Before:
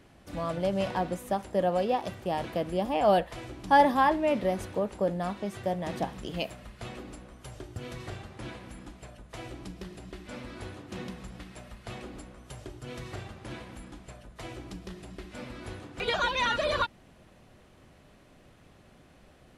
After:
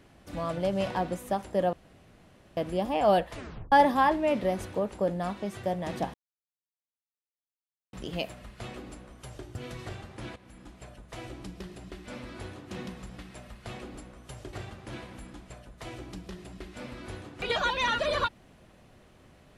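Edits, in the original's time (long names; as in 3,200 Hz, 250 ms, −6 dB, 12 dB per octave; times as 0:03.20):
0:01.73–0:02.57: fill with room tone
0:03.33: tape stop 0.39 s
0:06.14: splice in silence 1.79 s
0:08.57–0:09.08: fade in, from −12.5 dB
0:12.74–0:13.11: remove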